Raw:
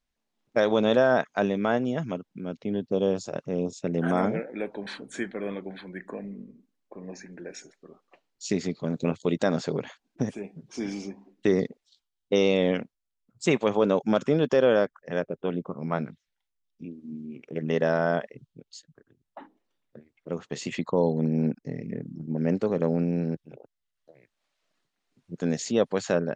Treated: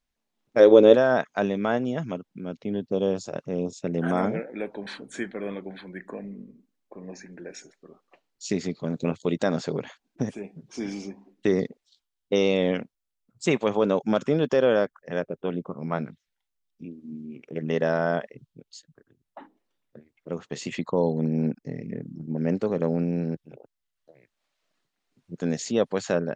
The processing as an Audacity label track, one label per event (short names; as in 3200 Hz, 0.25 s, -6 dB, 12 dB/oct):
0.600000	0.950000	spectral gain 240–600 Hz +11 dB